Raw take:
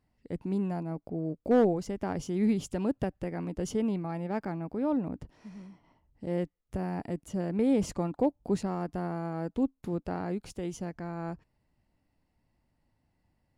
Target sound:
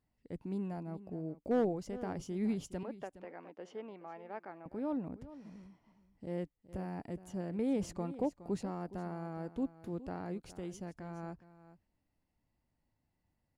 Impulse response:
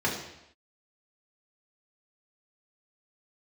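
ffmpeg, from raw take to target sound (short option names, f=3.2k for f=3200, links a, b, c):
-filter_complex "[0:a]asettb=1/sr,asplit=3[a][b][c];[a]atrim=end=2.834[d];[b]atrim=start=2.83:end=4.66,asetpts=PTS-STARTPTS,afade=t=in:d=0.004:c=qsin,afade=t=out:st=1.826:d=0.004:c=qsin,highpass=510,lowpass=2.6k[e];[c]atrim=start=4.656[f];[d][e]acrossfade=d=0.004:c1=hsin:c2=qsin[g];[g][f]acrossfade=d=0.004:c1=qsin:c2=hsin,asplit=2[h][i];[i]aecho=0:1:416:0.168[j];[h][j]amix=inputs=2:normalize=0,volume=-7.5dB"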